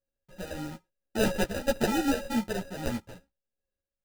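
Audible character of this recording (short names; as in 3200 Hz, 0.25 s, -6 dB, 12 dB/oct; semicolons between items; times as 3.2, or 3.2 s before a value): a buzz of ramps at a fixed pitch in blocks of 16 samples; random-step tremolo 4.2 Hz, depth 70%; aliases and images of a low sample rate 1100 Hz, jitter 0%; a shimmering, thickened sound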